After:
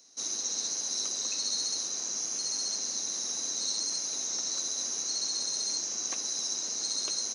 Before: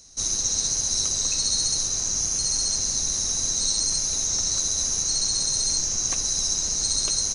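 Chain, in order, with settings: HPF 230 Hz 24 dB/oct; bell 8600 Hz -11.5 dB 0.5 oct; gain -5.5 dB

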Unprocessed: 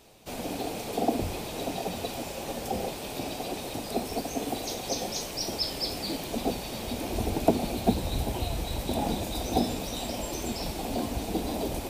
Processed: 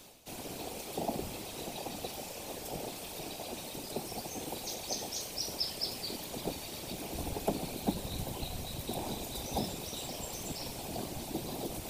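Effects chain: whisperiser; reverse; upward compressor, threshold -33 dBFS; reverse; high shelf 3700 Hz +7.5 dB; gain -9 dB

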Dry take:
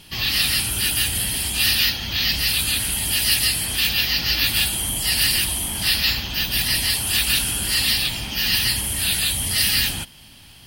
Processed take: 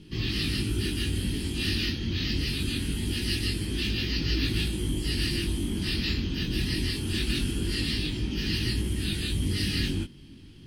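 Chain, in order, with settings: resonant low shelf 490 Hz +11.5 dB, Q 3; chorus 0.23 Hz, delay 19 ms, depth 3.4 ms; air absorption 60 m; gain -7 dB

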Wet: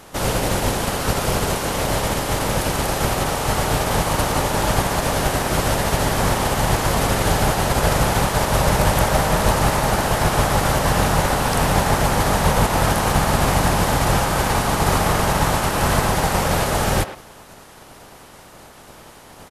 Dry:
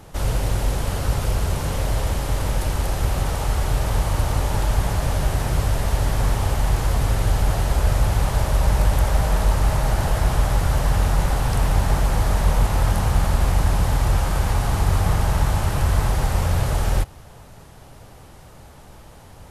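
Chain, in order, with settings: spectral limiter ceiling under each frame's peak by 17 dB; speakerphone echo 0.11 s, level -11 dB

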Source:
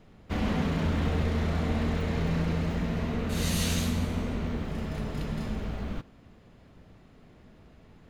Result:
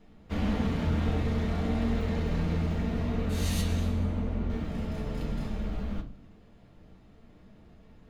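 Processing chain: 3.61–4.5 high shelf 2800 Hz -11.5 dB; reverb RT60 0.40 s, pre-delay 4 ms, DRR 1 dB; gain -5.5 dB

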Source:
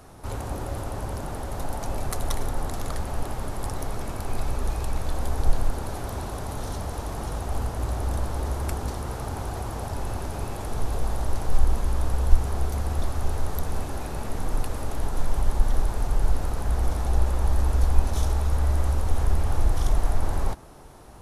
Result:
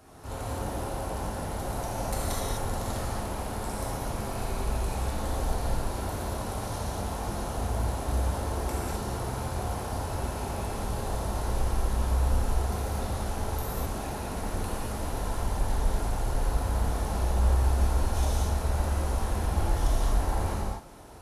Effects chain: HPF 59 Hz 6 dB/oct; notch 1200 Hz, Q 13; non-linear reverb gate 0.28 s flat, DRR -7 dB; gain -7 dB

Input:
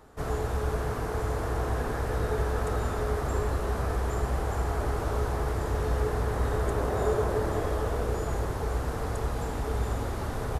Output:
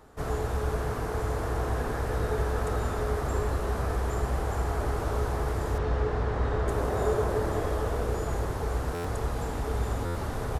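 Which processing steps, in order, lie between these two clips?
5.78–6.68 LPF 4400 Hz 12 dB/oct; stuck buffer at 8.94/10.05, samples 512, times 8

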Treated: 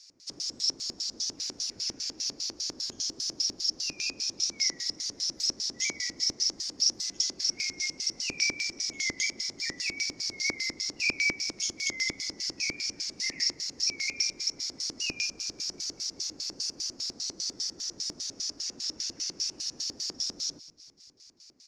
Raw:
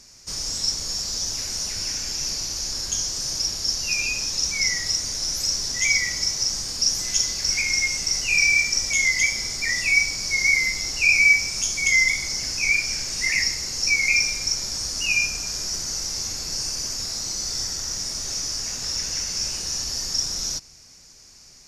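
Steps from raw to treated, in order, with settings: LFO band-pass square 5 Hz 310–4300 Hz; frequency-shifting echo 0.194 s, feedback 61%, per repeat -42 Hz, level -21 dB

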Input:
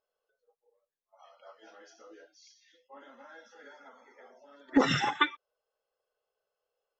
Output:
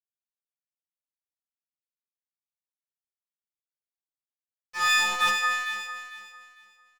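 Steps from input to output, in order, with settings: frequency quantiser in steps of 6 st; steep high-pass 890 Hz 72 dB/oct; notch 3700 Hz, Q 11; in parallel at -2.5 dB: compressor, threshold -37 dBFS, peak gain reduction 19 dB; on the sum: transient shaper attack -3 dB, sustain +3 dB; crossover distortion -32 dBFS; on a send: echo with dull and thin repeats by turns 0.225 s, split 1600 Hz, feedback 51%, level -4 dB; on the sum: overloaded stage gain 16 dB; doubler 29 ms -2.5 dB; sustainer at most 50 dB/s

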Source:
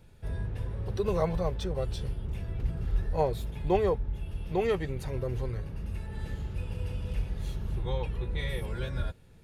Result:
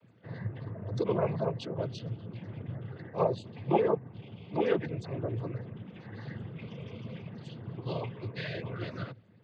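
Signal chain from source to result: loudest bins only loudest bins 64; noise vocoder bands 16

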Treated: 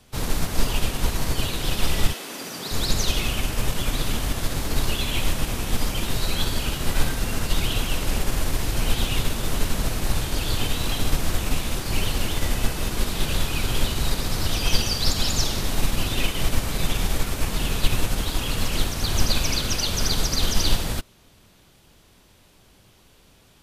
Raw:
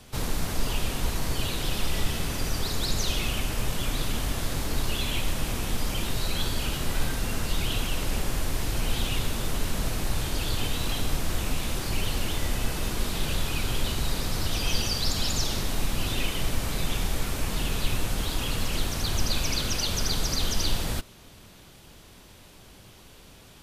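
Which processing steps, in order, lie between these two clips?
2.12–2.7 HPF 320 Hz -> 140 Hz 24 dB/oct; upward expander 1.5:1, over -42 dBFS; gain +7.5 dB

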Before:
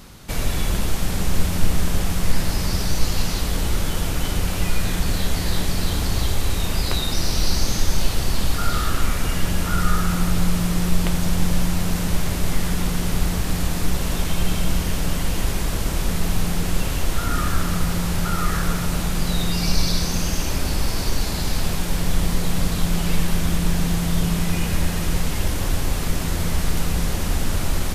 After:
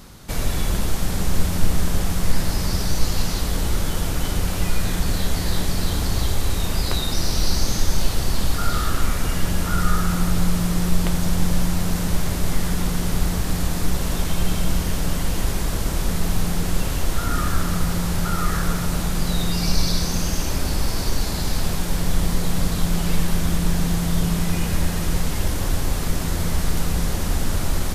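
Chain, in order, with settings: bell 2600 Hz -3 dB 0.77 oct

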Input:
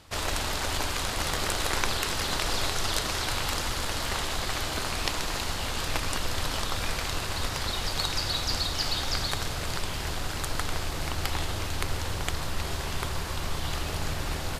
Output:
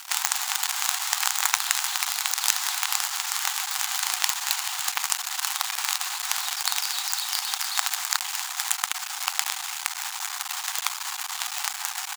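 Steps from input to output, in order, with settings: bell 7000 Hz +9 dB 0.49 oct; in parallel at +2 dB: negative-ratio compressor -31 dBFS, ratio -1; on the sum: companded quantiser 2-bit; tempo 1.2×; brick-wall FIR high-pass 710 Hz; gain -3 dB

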